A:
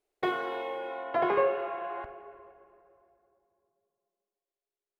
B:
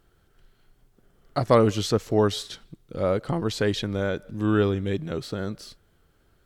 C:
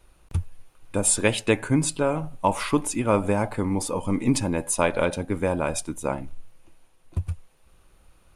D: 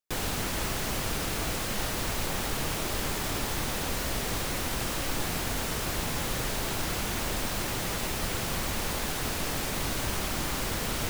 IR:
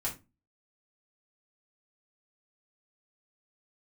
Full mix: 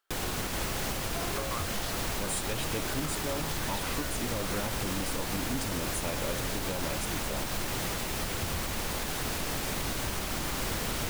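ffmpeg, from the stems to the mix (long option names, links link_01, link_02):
-filter_complex "[0:a]volume=-11dB[link_01];[1:a]highpass=frequency=930:width=0.5412,highpass=frequency=930:width=1.3066,volume=-9.5dB[link_02];[2:a]asoftclip=type=tanh:threshold=-21dB,adelay=1250,volume=-6dB[link_03];[3:a]volume=0dB[link_04];[link_01][link_02][link_03][link_04]amix=inputs=4:normalize=0,alimiter=limit=-22dB:level=0:latency=1:release=137"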